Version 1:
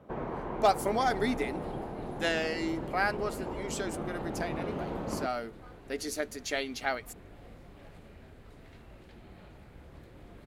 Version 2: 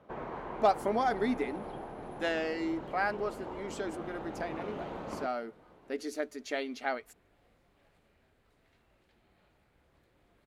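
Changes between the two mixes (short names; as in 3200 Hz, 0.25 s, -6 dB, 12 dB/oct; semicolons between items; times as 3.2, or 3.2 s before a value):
speech: add tilt -3.5 dB/oct; second sound -11.5 dB; master: add low shelf 460 Hz -8.5 dB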